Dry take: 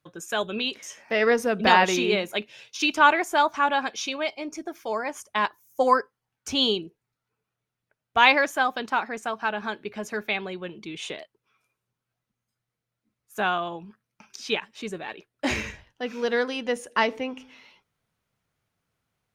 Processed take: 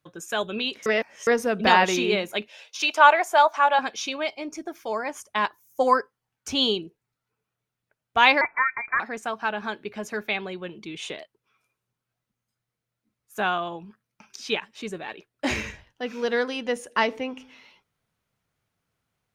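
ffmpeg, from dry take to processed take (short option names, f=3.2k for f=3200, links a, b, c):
-filter_complex "[0:a]asettb=1/sr,asplit=3[a][b][c];[a]atrim=end=2.484[d];[b]atrim=start=2.48:end=3.79,asetpts=PTS-STARTPTS,afade=t=in:d=0.004:c=qsin,afade=t=out:st=1.306:d=0.004:c=qsin,highpass=f=620:t=q:w=1.8[e];[c]atrim=start=3.786[f];[d][e]acrossfade=d=0.004:c1=hsin:c2=qsin[g];[g][f]acrossfade=d=0.004:c1=qsin:c2=hsin,asettb=1/sr,asplit=3[h][i][j];[h]atrim=end=8.414[k];[i]atrim=start=8.41:end=9,asetpts=PTS-STARTPTS,afade=t=in:d=0.004:c=qsin,afade=t=out:st=0.586:d=0.004:c=qsin,lowpass=f=2.2k:t=q:w=0.5098,lowpass=f=2.2k:t=q:w=0.6013,lowpass=f=2.2k:t=q:w=0.9,lowpass=f=2.2k:t=q:w=2.563,afreqshift=-2600[l];[j]atrim=start=8.996[m];[k][l]acrossfade=d=0.004:c1=hsin:c2=qsin[n];[n][m]acrossfade=d=0.004:c1=qsin:c2=hsin,asplit=3[o][p][q];[o]atrim=end=0.862[r];[p]atrim=start=0.858:end=1.272,asetpts=PTS-STARTPTS,areverse[s];[q]atrim=start=1.268[t];[r][s]acrossfade=d=0.004:c1=hsin:c2=hsin[u];[u][t]acrossfade=d=0.004:c1=hsin:c2=hsin"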